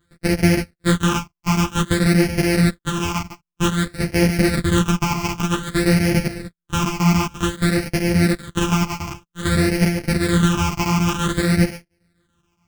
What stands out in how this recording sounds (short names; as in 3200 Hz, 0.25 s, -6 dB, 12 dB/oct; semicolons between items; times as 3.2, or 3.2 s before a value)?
a buzz of ramps at a fixed pitch in blocks of 256 samples; phasing stages 8, 0.53 Hz, lowest notch 500–1100 Hz; chopped level 7 Hz, depth 65%, duty 85%; a shimmering, thickened sound